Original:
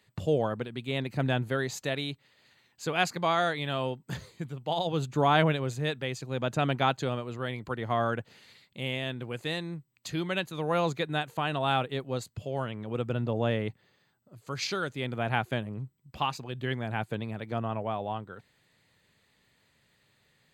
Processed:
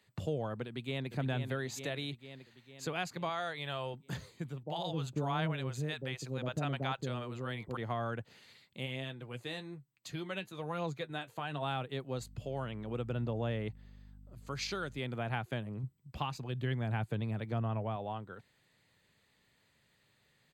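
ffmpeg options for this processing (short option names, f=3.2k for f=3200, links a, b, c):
-filter_complex "[0:a]asplit=2[a][b];[b]afade=t=in:st=0.66:d=0.01,afade=t=out:st=1.1:d=0.01,aecho=0:1:450|900|1350|1800|2250|2700|3150|3600:0.473151|0.283891|0.170334|0.102201|0.0613204|0.0367922|0.0220753|0.0132452[c];[a][c]amix=inputs=2:normalize=0,asettb=1/sr,asplit=3[d][e][f];[d]atrim=end=3.294[g];[e]atrim=start=3.29:end=3.94,asetpts=PTS-STARTPTS,afade=t=in:d=0.004:c=qsin,afade=t=out:st=0.646:d=0.004:c=qsin,equalizer=f=230:w=1.5:g=-12.5[h];[f]atrim=start=3.936[i];[g][h]acrossfade=d=0.004:c1=hsin:c2=qsin[j];[j][i]acrossfade=d=0.004:c1=qsin:c2=hsin,asettb=1/sr,asplit=3[k][l][m];[k]atrim=end=4.634[n];[l]atrim=start=4.63:end=7.77,asetpts=PTS-STARTPTS,afade=t=in:d=0.004:c=qsin,afade=t=out:st=3.136:d=0.004:c=qsin,acrossover=split=580[o][p];[p]adelay=40[q];[o][q]amix=inputs=2:normalize=0,atrim=end_sample=138474[r];[m]atrim=start=7.766[s];[n][r]acrossfade=d=0.004:c1=hsin:c2=qsin[t];[t][s]acrossfade=d=0.004:c1=qsin:c2=hsin,asplit=3[u][v][w];[u]afade=t=out:st=8.85:d=0.02[x];[v]flanger=delay=5.7:depth=4.6:regen=42:speed=1.2:shape=triangular,afade=t=in:st=8.85:d=0.02,afade=t=out:st=11.61:d=0.02[y];[w]afade=t=in:st=11.61:d=0.02[z];[x][y][z]amix=inputs=3:normalize=0,asettb=1/sr,asplit=3[aa][ab][ac];[aa]atrim=end=12.174[ad];[ab]atrim=start=12.17:end=14.99,asetpts=PTS-STARTPTS,afade=t=in:d=0.004:c=qsin,afade=t=out:st=2.816:d=0.004:c=qsin,aeval=exprs='val(0)+0.00355*(sin(2*PI*50*n/s)+sin(2*PI*2*50*n/s)/2+sin(2*PI*3*50*n/s)/3+sin(2*PI*4*50*n/s)/4+sin(2*PI*5*50*n/s)/5)':c=same[ae];[ac]atrim=start=14.986[af];[ad][ae]acrossfade=d=0.004:c1=hsin:c2=qsin[ag];[ag][af]acrossfade=d=0.004:c1=qsin:c2=hsin,asettb=1/sr,asplit=3[ah][ai][aj];[ah]atrim=end=15.834[ak];[ai]atrim=start=15.83:end=17.96,asetpts=PTS-STARTPTS,afade=t=in:d=0.004:c=qsin,afade=t=out:st=2.126:d=0.004:c=qsin,lowshelf=f=150:g=9[al];[aj]atrim=start=17.956[am];[ak][al]acrossfade=d=0.004:c1=hsin:c2=qsin[an];[an][am]acrossfade=d=0.004:c1=qsin:c2=hsin,acrossover=split=140[ao][ap];[ap]acompressor=threshold=-32dB:ratio=2.5[aq];[ao][aq]amix=inputs=2:normalize=0,volume=-3.5dB"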